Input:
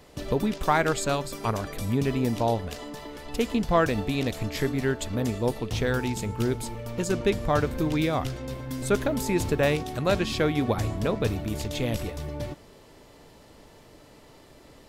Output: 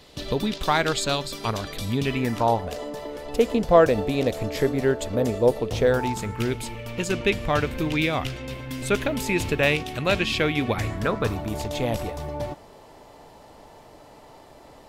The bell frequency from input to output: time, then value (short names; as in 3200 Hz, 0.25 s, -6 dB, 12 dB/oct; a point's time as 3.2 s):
bell +10.5 dB 0.99 oct
1.97 s 3800 Hz
2.76 s 540 Hz
5.89 s 540 Hz
6.47 s 2600 Hz
10.67 s 2600 Hz
11.51 s 800 Hz